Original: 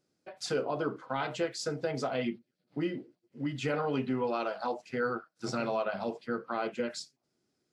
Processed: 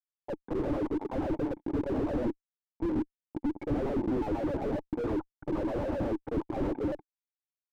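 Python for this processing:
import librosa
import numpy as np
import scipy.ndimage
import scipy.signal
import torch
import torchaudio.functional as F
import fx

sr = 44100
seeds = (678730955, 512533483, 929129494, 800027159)

p1 = fx.pitch_trill(x, sr, semitones=-2.0, every_ms=108)
p2 = fx.auto_swell(p1, sr, attack_ms=130.0)
p3 = fx.filter_lfo_bandpass(p2, sr, shape='saw_down', hz=8.3, low_hz=280.0, high_hz=1600.0, q=5.2)
p4 = fx.rider(p3, sr, range_db=4, speed_s=2.0)
p5 = p3 + (p4 * librosa.db_to_amplitude(0.0))
p6 = fx.hpss(p5, sr, part='percussive', gain_db=6)
p7 = fx.small_body(p6, sr, hz=(550.0, 1600.0), ring_ms=25, db=11)
p8 = fx.fuzz(p7, sr, gain_db=45.0, gate_db=-46.0)
p9 = fx.formant_cascade(p8, sr, vowel='u')
p10 = fx.slew_limit(p9, sr, full_power_hz=5.7)
y = p10 * librosa.db_to_amplitude(7.5)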